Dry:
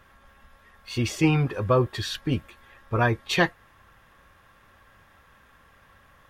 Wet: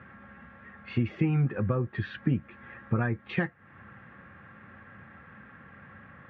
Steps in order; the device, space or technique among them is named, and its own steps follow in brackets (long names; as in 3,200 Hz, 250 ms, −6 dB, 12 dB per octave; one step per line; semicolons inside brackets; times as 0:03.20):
bass amplifier (downward compressor 5 to 1, threshold −35 dBFS, peak gain reduction 17.5 dB; loudspeaker in its box 85–2,100 Hz, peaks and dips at 140 Hz +4 dB, 210 Hz +8 dB, 420 Hz −4 dB, 640 Hz −7 dB, 1,000 Hz −10 dB)
level +8.5 dB